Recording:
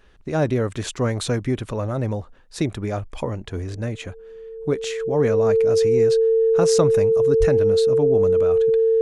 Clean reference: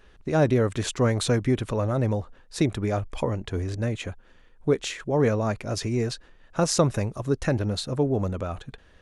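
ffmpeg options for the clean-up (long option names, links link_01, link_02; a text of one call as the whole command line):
ffmpeg -i in.wav -filter_complex "[0:a]bandreject=frequency=450:width=30,asplit=3[link_01][link_02][link_03];[link_01]afade=type=out:start_time=7.39:duration=0.02[link_04];[link_02]highpass=frequency=140:width=0.5412,highpass=frequency=140:width=1.3066,afade=type=in:start_time=7.39:duration=0.02,afade=type=out:start_time=7.51:duration=0.02[link_05];[link_03]afade=type=in:start_time=7.51:duration=0.02[link_06];[link_04][link_05][link_06]amix=inputs=3:normalize=0" out.wav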